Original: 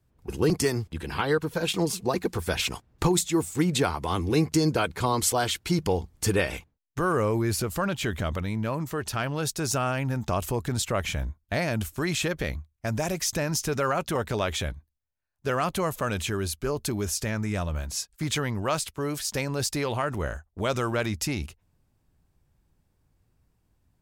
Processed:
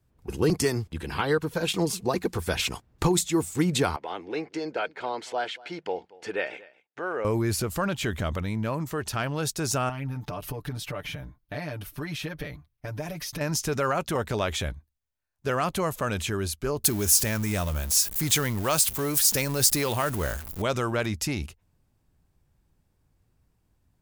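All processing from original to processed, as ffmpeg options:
-filter_complex "[0:a]asettb=1/sr,asplit=3[s0][s1][s2];[s0]atrim=end=3.964[s3];[s1]atrim=start=3.96:end=7.25,asetpts=PTS-STARTPTS,afade=t=in:d=0.004:c=qsin,afade=t=out:st=3.286:d=0.004:c=qsin,highpass=530,lowpass=2400,equalizer=f=1100:t=o:w=0.35:g=-11.5,aecho=1:1:233:0.0841,atrim=end_sample=145089[s4];[s2]atrim=start=7.246[s5];[s3][s4]acrossfade=d=0.004:c1=hsin:c2=qsin[s6];[s6][s5]acrossfade=d=0.004:c1=qsin:c2=hsin,asettb=1/sr,asplit=3[s7][s8][s9];[s7]atrim=end=9.894[s10];[s8]atrim=start=9.89:end=13.41,asetpts=PTS-STARTPTS,afade=t=in:d=0.004:c=qsin,afade=t=out:st=3.516:d=0.004:c=qsin,equalizer=f=7400:w=2.5:g=-13.5,acompressor=threshold=0.0158:ratio=3:attack=3.2:release=140:knee=1:detection=peak,aecho=1:1:6.8:0.99,atrim=end_sample=155232[s11];[s9]atrim=start=13.406[s12];[s10][s11]acrossfade=d=0.004:c1=hsin:c2=qsin[s13];[s13][s12]acrossfade=d=0.004:c1=qsin:c2=hsin,asettb=1/sr,asplit=3[s14][s15][s16];[s14]atrim=end=16.844[s17];[s15]atrim=start=16.84:end=20.62,asetpts=PTS-STARTPTS,afade=t=in:d=0.004:c=qsin,afade=t=out:st=3.776:d=0.004:c=qsin,aeval=exprs='val(0)+0.5*0.015*sgn(val(0))':c=same,aemphasis=mode=production:type=50fm[s18];[s16]atrim=start=20.616[s19];[s17][s18]acrossfade=d=0.004:c1=hsin:c2=qsin[s20];[s20][s19]acrossfade=d=0.004:c1=qsin:c2=hsin"

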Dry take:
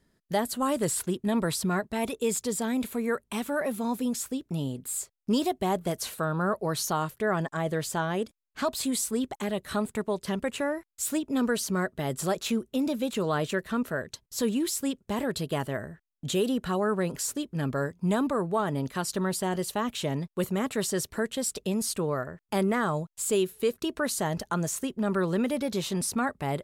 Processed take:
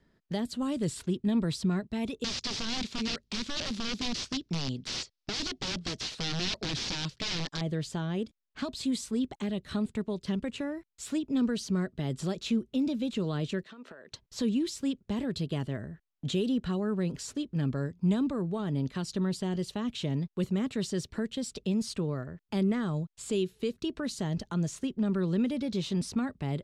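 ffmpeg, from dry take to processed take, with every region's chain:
-filter_complex "[0:a]asettb=1/sr,asplit=3[s0][s1][s2];[s0]atrim=end=2.244[s3];[s1]atrim=start=2.24:end=7.61,asetpts=PTS-STARTPTS,afade=t=in:d=0.004:c=qsin,afade=t=out:st=5.366:d=0.004:c=qsin,highshelf=f=2700:g=9,aeval=exprs='(mod(15.8*val(0)+1,2)-1)/15.8':c=same,lowpass=f=5300:t=q:w=2[s4];[s2]atrim=start=7.606[s5];[s3][s4]acrossfade=d=0.004:c1=hsin:c2=qsin[s6];[s6][s5]acrossfade=d=0.004:c1=qsin:c2=hsin,asettb=1/sr,asplit=3[s7][s8][s9];[s7]atrim=end=13.634[s10];[s8]atrim=start=13.63:end=14.12,asetpts=PTS-STARTPTS,afade=t=in:d=0.004:c=qsin,afade=t=out:st=0.486:d=0.004:c=qsin,highpass=380,lowpass=7200,acompressor=threshold=0.01:ratio=16:attack=3.2:release=140:knee=1:detection=peak[s11];[s9]atrim=start=14.116[s12];[s10][s11]acrossfade=d=0.004:c1=hsin:c2=qsin[s13];[s13][s12]acrossfade=d=0.004:c1=qsin:c2=hsin,lowpass=4100,acrossover=split=340|3000[s14][s15][s16];[s15]acompressor=threshold=0.002:ratio=2[s17];[s14][s17][s16]amix=inputs=3:normalize=0,volume=1.19"

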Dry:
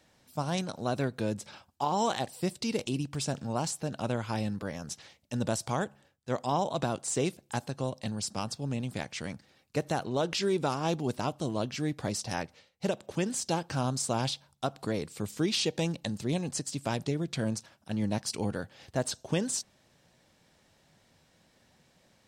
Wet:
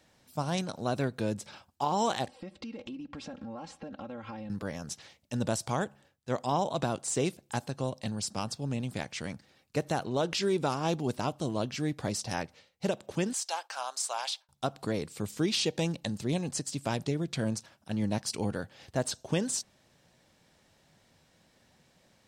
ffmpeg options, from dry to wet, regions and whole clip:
-filter_complex "[0:a]asettb=1/sr,asplit=3[s0][s1][s2];[s0]atrim=end=2.284[s3];[s1]atrim=start=2.28:end=4.5,asetpts=PTS-STARTPTS,afade=t=in:d=0.004:c=qsin,afade=t=out:st=2.216:d=0.004:c=qsin,lowpass=2500,aecho=1:1:3.7:0.88,atrim=end_sample=97902,acompressor=threshold=0.0126:ratio=8:attack=3.2:release=140:knee=1:detection=peak[s4];[s2]atrim=start=4.496[s5];[s3][s4]acrossfade=d=0.004:c1=hsin:c2=qsin[s6];[s6][s5]acrossfade=d=0.004:c1=qsin:c2=hsin,asettb=1/sr,asplit=3[s7][s8][s9];[s7]atrim=end=13.334[s10];[s8]atrim=start=13.33:end=14.49,asetpts=PTS-STARTPTS,afade=t=in:d=0.004:c=qsin,afade=t=out:st=1.156:d=0.004:c=qsin,highpass=f=710:w=0.5412,highpass=f=710:w=1.3066,agate=range=0.0224:threshold=0.00251:ratio=3:release=100:detection=peak[s11];[s9]atrim=start=14.486[s12];[s10][s11]acrossfade=d=0.004:c1=hsin:c2=qsin[s13];[s13][s12]acrossfade=d=0.004:c1=qsin:c2=hsin"

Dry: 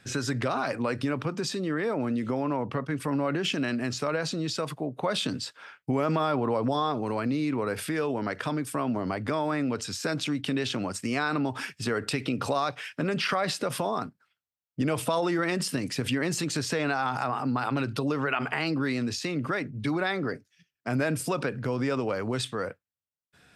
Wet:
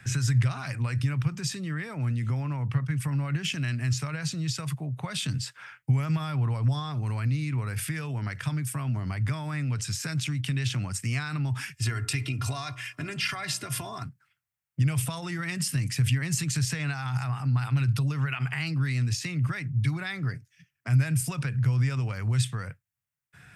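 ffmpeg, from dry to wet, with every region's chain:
-filter_complex "[0:a]asettb=1/sr,asplit=3[s0][s1][s2];[s0]atrim=end=11.744[s3];[s1]atrim=start=11.74:end=14.04,asetpts=PTS-STARTPTS,afade=t=in:d=0.004:c=qsin,afade=t=out:st=2.296:d=0.004:c=qsin,aecho=1:1:2.9:0.64,atrim=end_sample=101430,bandreject=f=60.98:t=h:w=4,bandreject=f=121.96:t=h:w=4,bandreject=f=182.94:t=h:w=4,bandreject=f=243.92:t=h:w=4,bandreject=f=304.9:t=h:w=4,bandreject=f=365.88:t=h:w=4,bandreject=f=426.86:t=h:w=4,bandreject=f=487.84:t=h:w=4,bandreject=f=548.82:t=h:w=4,bandreject=f=609.8:t=h:w=4,bandreject=f=670.78:t=h:w=4,bandreject=f=731.76:t=h:w=4,bandreject=f=792.74:t=h:w=4,bandreject=f=853.72:t=h:w=4,bandreject=f=914.7:t=h:w=4,bandreject=f=975.68:t=h:w=4,bandreject=f=1036.66:t=h:w=4,bandreject=f=1097.64:t=h:w=4,bandreject=f=1158.62:t=h:w=4,bandreject=f=1219.6:t=h:w=4,bandreject=f=1280.58:t=h:w=4,bandreject=f=1341.56:t=h:w=4,bandreject=f=1402.54:t=h:w=4[s4];[s2]atrim=start=14.036[s5];[s3][s4]acrossfade=d=0.004:c1=hsin:c2=qsin[s6];[s6][s5]acrossfade=d=0.004:c1=qsin:c2=hsin,equalizer=f=125:t=o:w=1:g=11,equalizer=f=250:t=o:w=1:g=-6,equalizer=f=500:t=o:w=1:g=-8,equalizer=f=2000:t=o:w=1:g=6,equalizer=f=4000:t=o:w=1:g=-8,acrossover=split=150|3000[s7][s8][s9];[s8]acompressor=threshold=0.002:ratio=2[s10];[s7][s10][s9]amix=inputs=3:normalize=0,volume=1.78"

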